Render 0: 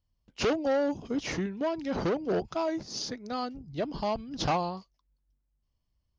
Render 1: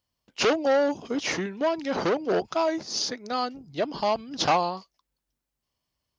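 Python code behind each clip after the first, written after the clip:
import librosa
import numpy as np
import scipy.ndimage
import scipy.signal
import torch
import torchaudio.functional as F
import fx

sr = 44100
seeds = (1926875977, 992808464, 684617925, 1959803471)

y = fx.highpass(x, sr, hz=470.0, slope=6)
y = y * 10.0 ** (7.5 / 20.0)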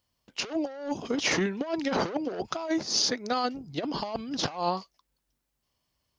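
y = fx.over_compress(x, sr, threshold_db=-28.0, ratio=-0.5)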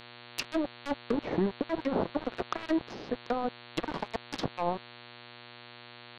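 y = np.where(np.abs(x) >= 10.0 ** (-28.0 / 20.0), x, 0.0)
y = fx.env_lowpass_down(y, sr, base_hz=730.0, full_db=-26.5)
y = fx.dmg_buzz(y, sr, base_hz=120.0, harmonics=37, level_db=-51.0, tilt_db=-1, odd_only=False)
y = y * 10.0 ** (1.0 / 20.0)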